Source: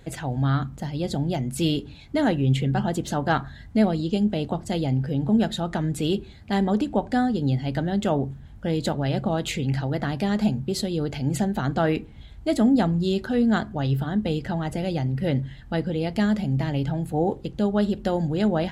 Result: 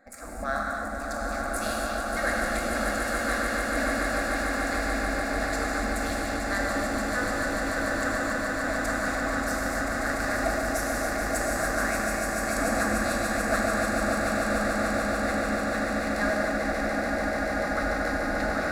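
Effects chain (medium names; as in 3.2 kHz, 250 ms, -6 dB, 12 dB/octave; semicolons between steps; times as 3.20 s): local Wiener filter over 15 samples; de-hum 132.2 Hz, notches 3; spectral gate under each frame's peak -15 dB weak; static phaser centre 620 Hz, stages 8; echo with a slow build-up 146 ms, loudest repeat 8, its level -7 dB; gated-style reverb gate 310 ms flat, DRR -1.5 dB; trim +5 dB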